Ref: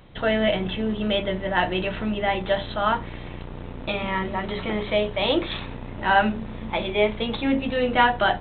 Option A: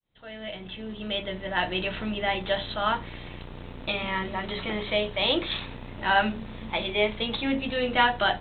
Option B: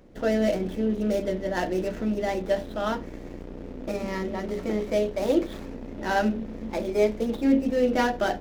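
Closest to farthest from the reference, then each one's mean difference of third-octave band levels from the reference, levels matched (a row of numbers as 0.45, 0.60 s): A, B; 2.5, 7.5 dB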